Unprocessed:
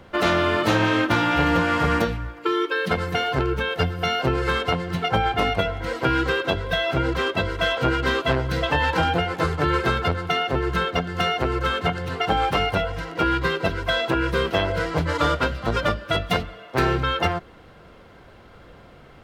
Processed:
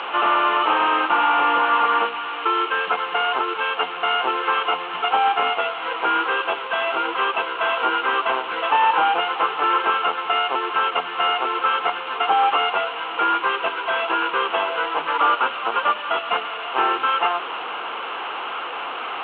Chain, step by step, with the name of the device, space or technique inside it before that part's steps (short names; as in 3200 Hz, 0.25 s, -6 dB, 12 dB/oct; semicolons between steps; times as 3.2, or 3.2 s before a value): digital answering machine (BPF 340–3300 Hz; delta modulation 16 kbps, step -27 dBFS; speaker cabinet 480–4500 Hz, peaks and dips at 580 Hz -7 dB, 870 Hz +7 dB, 1200 Hz +8 dB, 1900 Hz -6 dB, 2900 Hz +8 dB, 4200 Hz +7 dB); gain +2.5 dB